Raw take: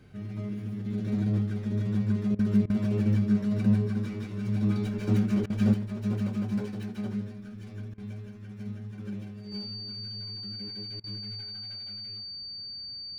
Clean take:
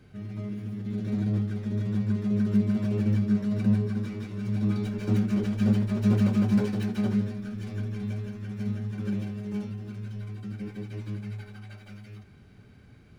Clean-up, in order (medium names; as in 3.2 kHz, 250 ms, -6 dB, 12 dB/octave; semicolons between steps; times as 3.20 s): band-stop 4.6 kHz, Q 30; interpolate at 2.35/2.66/5.46/7.94/11.00 s, 38 ms; gain correction +7 dB, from 5.74 s